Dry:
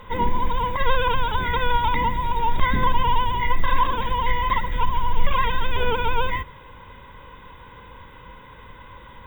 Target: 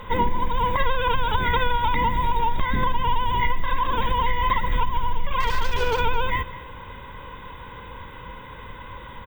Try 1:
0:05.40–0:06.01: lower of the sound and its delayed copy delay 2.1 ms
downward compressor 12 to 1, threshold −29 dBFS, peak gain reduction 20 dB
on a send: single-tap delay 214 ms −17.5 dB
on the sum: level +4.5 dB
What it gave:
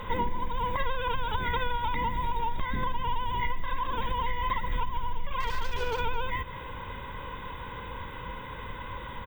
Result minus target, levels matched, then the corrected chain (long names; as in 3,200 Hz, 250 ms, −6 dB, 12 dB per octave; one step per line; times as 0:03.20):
downward compressor: peak gain reduction +8 dB
0:05.40–0:06.01: lower of the sound and its delayed copy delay 2.1 ms
downward compressor 12 to 1, threshold −20.5 dBFS, peak gain reduction 12 dB
on a send: single-tap delay 214 ms −17.5 dB
on the sum: level +4.5 dB